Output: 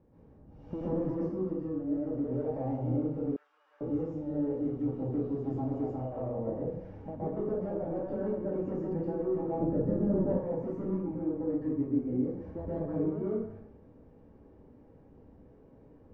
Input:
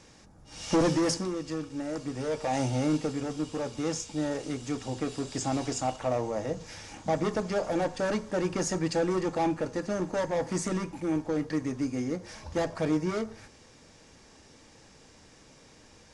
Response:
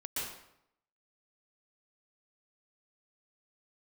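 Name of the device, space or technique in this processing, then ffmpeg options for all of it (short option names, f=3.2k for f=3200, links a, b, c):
television next door: -filter_complex "[0:a]acompressor=threshold=-29dB:ratio=6,lowpass=530[a];[1:a]atrim=start_sample=2205[b];[a][b]afir=irnorm=-1:irlink=0,asettb=1/sr,asplit=3[c][d][e];[c]atrim=end=3.364[f];[d]atrim=start=3.36:end=3.81,asetpts=PTS-STARTPTS,afade=t=in:d=0.004:c=qsin,afade=t=out:st=0.446:d=0.004:c=qsin,highpass=f=1.4k:w=0.5412,highpass=f=1.4k:w=1.3066[g];[e]atrim=start=3.806[h];[f][g]acrossfade=d=0.004:c1=hsin:c2=qsin[i];[i][h]acrossfade=d=0.004:c1=qsin:c2=hsin,asettb=1/sr,asplit=3[j][k][l];[j]atrim=end=9.594[m];[k]atrim=start=9.59:end=10.39,asetpts=PTS-STARTPTS,afade=t=in:d=0.004:c=qsin,afade=t=out:st=0.796:d=0.004:c=qsin,lowshelf=f=280:g=11[n];[l]atrim=start=10.386[o];[m][n]acrossfade=d=0.004:c1=hsin:c2=qsin[p];[p][o]acrossfade=d=0.004:c1=qsin:c2=hsin"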